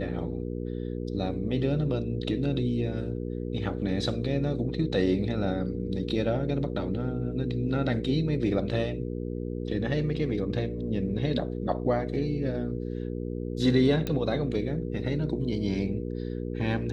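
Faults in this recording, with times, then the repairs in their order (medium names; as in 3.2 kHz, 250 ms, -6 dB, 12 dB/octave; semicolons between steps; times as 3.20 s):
hum 60 Hz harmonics 8 -33 dBFS
14.07 s: pop -16 dBFS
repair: de-click; de-hum 60 Hz, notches 8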